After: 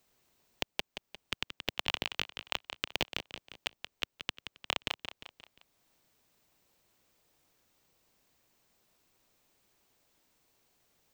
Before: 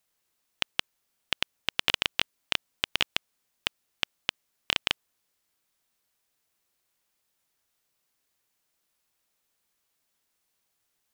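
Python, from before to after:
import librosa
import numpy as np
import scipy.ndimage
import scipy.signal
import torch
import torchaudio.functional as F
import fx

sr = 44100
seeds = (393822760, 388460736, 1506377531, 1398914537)

p1 = fx.sample_hold(x, sr, seeds[0], rate_hz=1800.0, jitter_pct=0)
p2 = x + (p1 * librosa.db_to_amplitude(-8.0))
p3 = fx.peak_eq(p2, sr, hz=11000.0, db=-11.0, octaves=0.29)
p4 = fx.echo_feedback(p3, sr, ms=176, feedback_pct=36, wet_db=-10.5)
p5 = fx.band_squash(p4, sr, depth_pct=40)
y = p5 * librosa.db_to_amplitude(-7.5)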